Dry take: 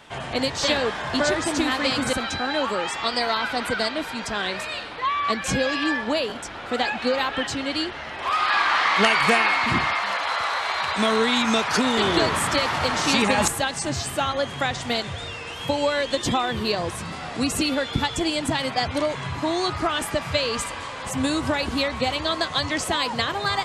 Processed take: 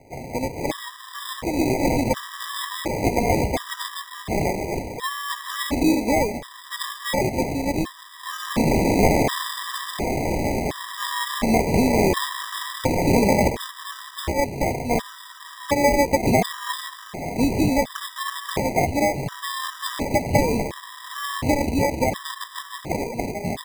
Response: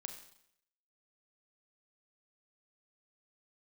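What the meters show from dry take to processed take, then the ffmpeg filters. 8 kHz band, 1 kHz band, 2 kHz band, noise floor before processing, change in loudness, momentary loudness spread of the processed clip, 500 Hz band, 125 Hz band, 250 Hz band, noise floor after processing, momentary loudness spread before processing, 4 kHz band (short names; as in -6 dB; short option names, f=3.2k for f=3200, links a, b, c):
-1.0 dB, -1.5 dB, -5.5 dB, -34 dBFS, -0.5 dB, 13 LU, +2.0 dB, +6.0 dB, +3.5 dB, -42 dBFS, 8 LU, -7.0 dB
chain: -af "dynaudnorm=f=240:g=13:m=9.5dB,acrusher=samples=31:mix=1:aa=0.000001,afftfilt=real='re*gt(sin(2*PI*0.7*pts/sr)*(1-2*mod(floor(b*sr/1024/980),2)),0)':imag='im*gt(sin(2*PI*0.7*pts/sr)*(1-2*mod(floor(b*sr/1024/980),2)),0)':win_size=1024:overlap=0.75,volume=-2dB"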